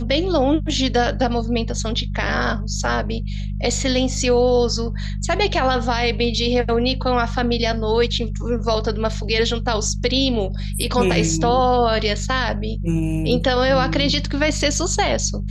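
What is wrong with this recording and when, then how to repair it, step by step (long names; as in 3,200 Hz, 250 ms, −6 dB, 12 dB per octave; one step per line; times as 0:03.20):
mains hum 50 Hz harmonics 4 −25 dBFS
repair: hum removal 50 Hz, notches 4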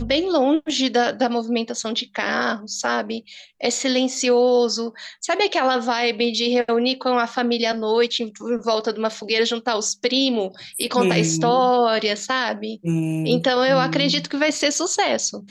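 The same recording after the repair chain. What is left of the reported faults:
none of them is left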